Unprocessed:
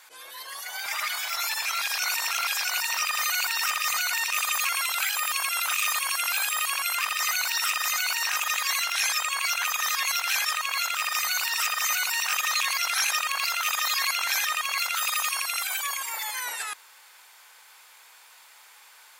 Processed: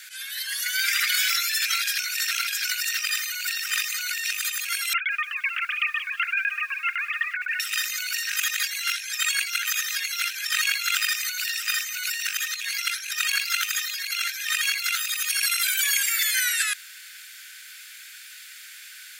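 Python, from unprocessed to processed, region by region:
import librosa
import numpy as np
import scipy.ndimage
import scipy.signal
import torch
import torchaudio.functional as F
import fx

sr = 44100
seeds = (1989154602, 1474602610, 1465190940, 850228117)

y = fx.chain(x, sr, fx.sine_speech(),
    fx.tremolo_shape(shape='saw_down', hz=7.9, depth_pct=100),
    fx.echo_crushed(ms=178, feedback_pct=35, bits=8, wet_db=-14), at=(4.93, 7.6))
y = scipy.signal.sosfilt(scipy.signal.ellip(4, 1.0, 40, 1500.0, 'highpass', fs=sr, output='sos'), y)
y = fx.over_compress(y, sr, threshold_db=-32.0, ratio=-0.5)
y = F.gain(torch.from_numpy(y), 6.5).numpy()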